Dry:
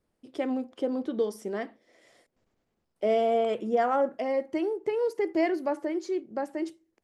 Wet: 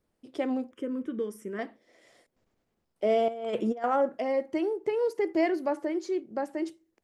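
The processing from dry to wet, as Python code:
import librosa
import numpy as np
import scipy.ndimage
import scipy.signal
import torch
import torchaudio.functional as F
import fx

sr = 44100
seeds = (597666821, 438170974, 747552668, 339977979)

y = fx.fixed_phaser(x, sr, hz=1800.0, stages=4, at=(0.71, 1.59))
y = fx.over_compress(y, sr, threshold_db=-30.0, ratio=-0.5, at=(3.28, 3.84))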